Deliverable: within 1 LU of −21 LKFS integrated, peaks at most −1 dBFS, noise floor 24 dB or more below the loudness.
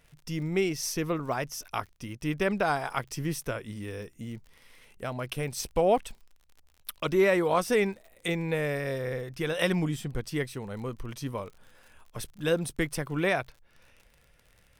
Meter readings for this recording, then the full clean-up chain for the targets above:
crackle rate 44 per second; integrated loudness −30.0 LKFS; sample peak −13.0 dBFS; target loudness −21.0 LKFS
→ click removal
level +9 dB

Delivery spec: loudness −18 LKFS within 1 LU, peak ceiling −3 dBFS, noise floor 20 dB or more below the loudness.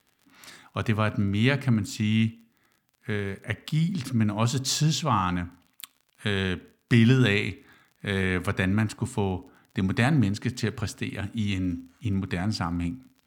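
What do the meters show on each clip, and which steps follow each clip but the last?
crackle rate 39 per second; integrated loudness −26.5 LKFS; sample peak −7.5 dBFS; target loudness −18.0 LKFS
→ click removal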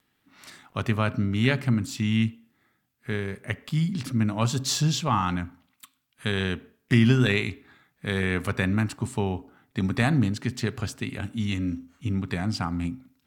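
crackle rate 0.45 per second; integrated loudness −26.5 LKFS; sample peak −7.5 dBFS; target loudness −18.0 LKFS
→ level +8.5 dB
brickwall limiter −3 dBFS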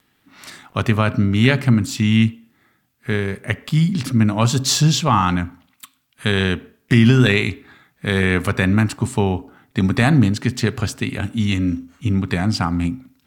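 integrated loudness −18.5 LKFS; sample peak −3.0 dBFS; background noise floor −64 dBFS

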